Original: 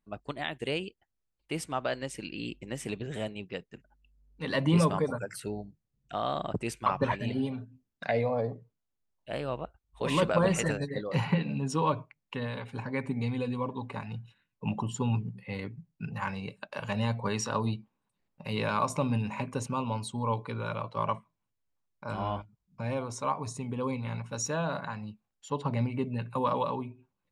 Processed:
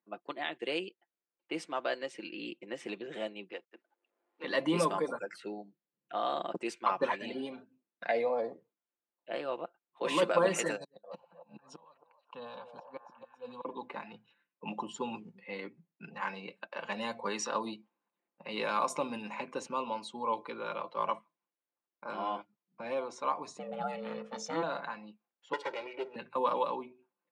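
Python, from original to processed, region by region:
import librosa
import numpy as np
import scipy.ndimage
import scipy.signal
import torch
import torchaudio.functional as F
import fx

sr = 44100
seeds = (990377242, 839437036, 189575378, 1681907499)

y = fx.chain(x, sr, fx.law_mismatch(coded='A'),
    fx.highpass(hz=270.0, slope=24),
    fx.band_squash(depth_pct=40), at=(3.52, 4.44))
y = fx.chain(y, sr, fx.fixed_phaser(hz=830.0, stages=4),
    fx.gate_flip(shuts_db=-28.0, range_db=-28),
    fx.echo_stepped(ms=274, hz=700.0, octaves=0.7, feedback_pct=70, wet_db=-5.5), at=(10.76, 13.65))
y = fx.chain(y, sr, fx.ring_mod(carrier_hz=330.0),
    fx.low_shelf(hz=430.0, db=7.0), at=(23.59, 24.63))
y = fx.chain(y, sr, fx.lower_of_two(delay_ms=0.36),
    fx.highpass(hz=370.0, slope=12),
    fx.comb(ms=2.1, depth=0.79), at=(25.53, 26.16))
y = fx.env_lowpass(y, sr, base_hz=2200.0, full_db=-23.5)
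y = scipy.signal.sosfilt(scipy.signal.butter(4, 260.0, 'highpass', fs=sr, output='sos'), y)
y = y + 0.44 * np.pad(y, (int(5.8 * sr / 1000.0), 0))[:len(y)]
y = y * 10.0 ** (-2.0 / 20.0)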